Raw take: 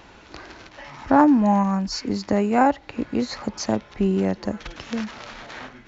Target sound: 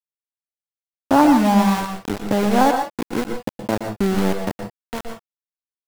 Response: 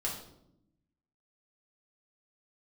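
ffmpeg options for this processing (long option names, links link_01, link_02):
-filter_complex "[0:a]lowpass=1800,aeval=exprs='val(0)*gte(abs(val(0)),0.0794)':channel_layout=same,asplit=2[link_01][link_02];[1:a]atrim=start_sample=2205,atrim=end_sample=3087,adelay=118[link_03];[link_02][link_03]afir=irnorm=-1:irlink=0,volume=-8dB[link_04];[link_01][link_04]amix=inputs=2:normalize=0,volume=1.5dB"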